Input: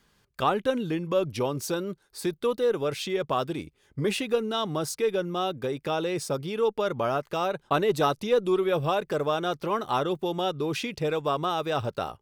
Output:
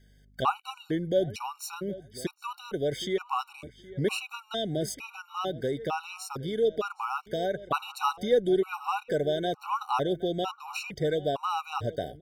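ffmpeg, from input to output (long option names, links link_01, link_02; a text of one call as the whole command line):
ffmpeg -i in.wav -filter_complex "[0:a]aeval=exprs='val(0)+0.00126*(sin(2*PI*50*n/s)+sin(2*PI*2*50*n/s)/2+sin(2*PI*3*50*n/s)/3+sin(2*PI*4*50*n/s)/4+sin(2*PI*5*50*n/s)/5)':channel_layout=same,asplit=2[link_01][link_02];[link_02]adelay=768,lowpass=frequency=3000:poles=1,volume=-17.5dB,asplit=2[link_03][link_04];[link_04]adelay=768,lowpass=frequency=3000:poles=1,volume=0.17[link_05];[link_01][link_03][link_05]amix=inputs=3:normalize=0,afftfilt=real='re*gt(sin(2*PI*1.1*pts/sr)*(1-2*mod(floor(b*sr/1024/750),2)),0)':imag='im*gt(sin(2*PI*1.1*pts/sr)*(1-2*mod(floor(b*sr/1024/750),2)),0)':win_size=1024:overlap=0.75" out.wav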